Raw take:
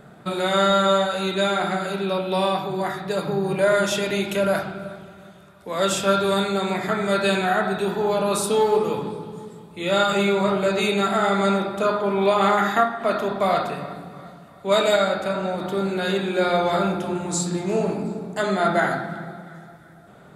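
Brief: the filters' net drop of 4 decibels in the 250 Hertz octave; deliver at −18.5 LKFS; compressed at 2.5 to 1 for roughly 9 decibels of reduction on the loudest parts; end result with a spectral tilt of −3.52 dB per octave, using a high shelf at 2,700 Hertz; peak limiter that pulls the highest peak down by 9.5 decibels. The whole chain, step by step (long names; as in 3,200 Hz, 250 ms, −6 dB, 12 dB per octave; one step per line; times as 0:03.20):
parametric band 250 Hz −6.5 dB
high-shelf EQ 2,700 Hz +6.5 dB
downward compressor 2.5 to 1, threshold −28 dBFS
level +13.5 dB
brickwall limiter −9.5 dBFS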